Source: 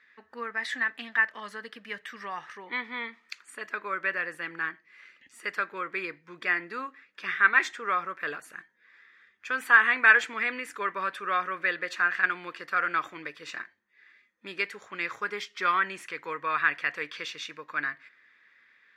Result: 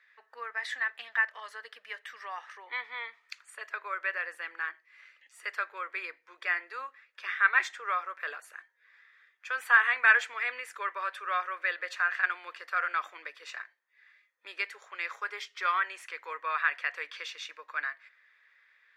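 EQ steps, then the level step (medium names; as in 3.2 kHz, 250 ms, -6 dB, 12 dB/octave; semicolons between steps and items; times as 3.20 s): high-pass 520 Hz 24 dB/octave; -3.0 dB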